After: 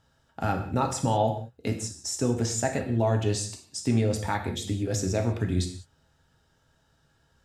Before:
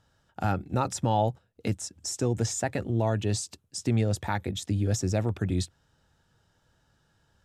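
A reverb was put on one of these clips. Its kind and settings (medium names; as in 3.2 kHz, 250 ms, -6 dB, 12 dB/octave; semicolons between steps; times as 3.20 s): gated-style reverb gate 220 ms falling, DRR 3 dB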